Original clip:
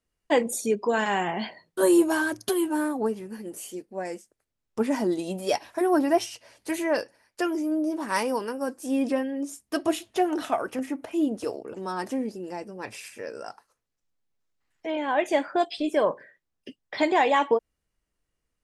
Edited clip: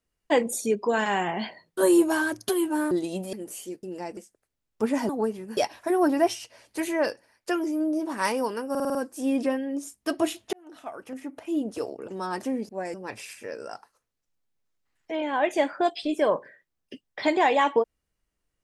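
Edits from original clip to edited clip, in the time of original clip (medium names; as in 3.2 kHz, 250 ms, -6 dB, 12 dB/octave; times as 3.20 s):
2.91–3.39 s: swap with 5.06–5.48 s
3.89–4.14 s: swap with 12.35–12.69 s
8.61 s: stutter 0.05 s, 6 plays
10.19–11.59 s: fade in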